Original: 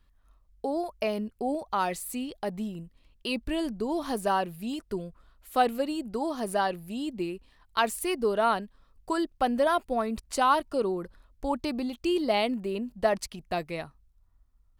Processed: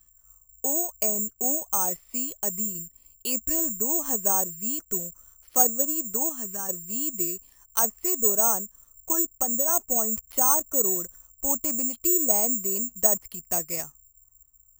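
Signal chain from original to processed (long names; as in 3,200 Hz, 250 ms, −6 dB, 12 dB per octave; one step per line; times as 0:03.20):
treble cut that deepens with the level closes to 1,100 Hz, closed at −24 dBFS
0:06.29–0:06.69: parametric band 630 Hz −13.5 dB 1.5 octaves
0:09.21–0:09.68: downward compressor, threshold −26 dBFS, peak gain reduction 6 dB
bad sample-rate conversion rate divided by 6×, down filtered, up zero stuff
level −3.5 dB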